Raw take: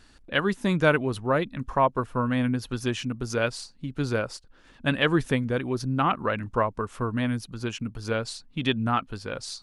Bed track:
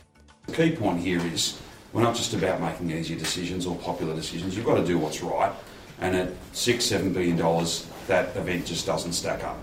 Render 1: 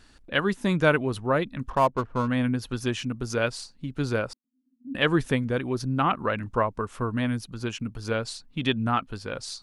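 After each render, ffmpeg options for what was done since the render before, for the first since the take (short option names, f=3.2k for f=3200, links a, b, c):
-filter_complex "[0:a]asettb=1/sr,asplit=3[a][b][c];[a]atrim=end=1.704[d];[b]atrim=start=1.7:end=2.28,asetpts=PTS-STARTPTS,afade=t=in:d=0.004:c=qsin,afade=t=out:st=0.576:d=0.004:c=qsin,adynamicsmooth=sensitivity=8:basefreq=1.1k[e];[c]atrim=start=2.276[f];[d][e]acrossfade=d=0.004:c1=hsin:c2=qsin[g];[g][f]acrossfade=d=0.004:c1=qsin:c2=hsin,asettb=1/sr,asplit=3[h][i][j];[h]atrim=end=4.334[k];[i]atrim=start=4.33:end=4.95,asetpts=PTS-STARTPTS,afade=t=in:d=0.004:c=qsin,afade=t=out:st=0.616:d=0.004:c=qsin,asuperpass=centerf=250:order=4:qfactor=7.7[l];[j]atrim=start=4.946[m];[k][l]acrossfade=d=0.004:c1=hsin:c2=qsin[n];[n][m]acrossfade=d=0.004:c1=qsin:c2=hsin"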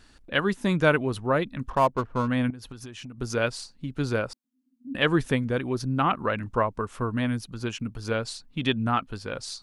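-filter_complex "[0:a]asettb=1/sr,asplit=3[a][b][c];[a]atrim=end=2.504[d];[b]atrim=start=2.5:end=3.18,asetpts=PTS-STARTPTS,afade=t=in:d=0.004:c=qsin,afade=t=out:st=0.676:d=0.004:c=qsin,acompressor=threshold=-36dB:ratio=16:attack=3.2:release=140:knee=1:detection=peak[e];[c]atrim=start=3.176[f];[d][e]acrossfade=d=0.004:c1=hsin:c2=qsin[g];[g][f]acrossfade=d=0.004:c1=qsin:c2=hsin"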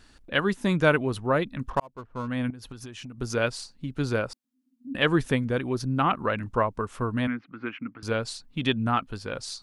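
-filter_complex "[0:a]asettb=1/sr,asplit=3[a][b][c];[a]atrim=end=7.274[d];[b]atrim=start=7.27:end=8.03,asetpts=PTS-STARTPTS,afade=t=in:d=0.004:c=qsin,afade=t=out:st=0.756:d=0.004:c=qsin,highpass=270,equalizer=f=280:t=q:w=4:g=7,equalizer=f=420:t=q:w=4:g=-8,equalizer=f=600:t=q:w=4:g=-6,equalizer=f=880:t=q:w=4:g=-4,equalizer=f=1.3k:t=q:w=4:g=6,equalizer=f=2.1k:t=q:w=4:g=9,lowpass=f=2.3k:w=0.5412,lowpass=f=2.3k:w=1.3066[e];[c]atrim=start=8.026[f];[d][e]acrossfade=d=0.004:c1=hsin:c2=qsin[g];[g][f]acrossfade=d=0.004:c1=qsin:c2=hsin,asplit=2[h][i];[h]atrim=end=1.8,asetpts=PTS-STARTPTS,afade=t=out:st=1.796:d=0.004:c=hsin[j];[i]atrim=start=1.8,asetpts=PTS-STARTPTS,afade=t=in:d=0.9[k];[j][k]concat=n=2:v=0:a=1"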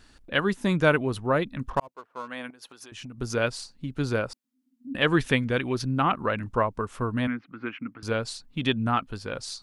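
-filter_complex "[0:a]asettb=1/sr,asplit=3[a][b][c];[a]atrim=end=1.884[d];[b]atrim=start=1.88:end=2.92,asetpts=PTS-STARTPTS,afade=t=in:d=0.004:c=qsin,afade=t=out:st=1.036:d=0.004:c=qsin,highpass=490[e];[c]atrim=start=2.916[f];[d][e]acrossfade=d=0.004:c1=hsin:c2=qsin[g];[g][f]acrossfade=d=0.004:c1=qsin:c2=hsin,asettb=1/sr,asplit=3[h][i][j];[h]atrim=end=5.124[k];[i]atrim=start=5.12:end=5.91,asetpts=PTS-STARTPTS,afade=t=in:d=0.004:c=qsin,afade=t=out:st=0.786:d=0.004:c=qsin,equalizer=f=2.7k:w=0.76:g=7.5[l];[j]atrim=start=5.906[m];[k][l]acrossfade=d=0.004:c1=hsin:c2=qsin[n];[n][m]acrossfade=d=0.004:c1=qsin:c2=hsin"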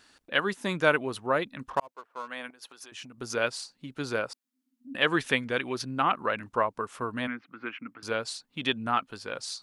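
-af "highpass=f=490:p=1"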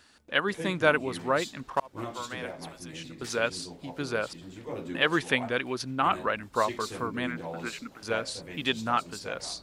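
-filter_complex "[1:a]volume=-15dB[a];[0:a][a]amix=inputs=2:normalize=0"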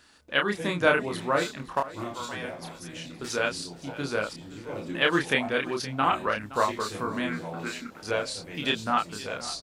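-filter_complex "[0:a]asplit=2[a][b];[b]adelay=29,volume=-3.5dB[c];[a][c]amix=inputs=2:normalize=0,aecho=1:1:519:0.141"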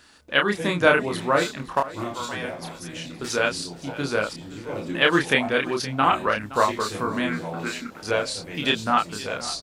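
-af "volume=4.5dB,alimiter=limit=-3dB:level=0:latency=1"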